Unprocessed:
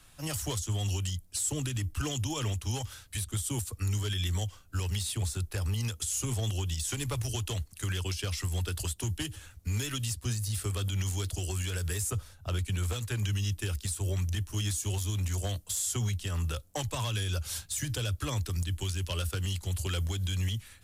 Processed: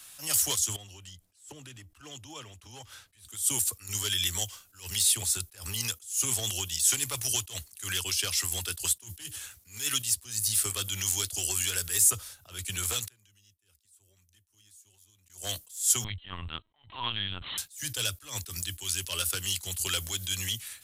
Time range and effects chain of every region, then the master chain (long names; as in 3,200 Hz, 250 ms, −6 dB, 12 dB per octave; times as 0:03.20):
0:00.76–0:03.25: low-pass filter 1,500 Hz 6 dB per octave + downward compressor 10 to 1, threshold −39 dBFS
0:13.06–0:15.30: gate with flip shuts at −34 dBFS, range −33 dB + low-shelf EQ 360 Hz +5 dB
0:16.04–0:17.58: parametric band 900 Hz +4 dB 0.44 octaves + comb filter 1 ms, depth 59% + linear-prediction vocoder at 8 kHz pitch kept
whole clip: spectral tilt +3.5 dB per octave; level that may rise only so fast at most 150 dB per second; level +2 dB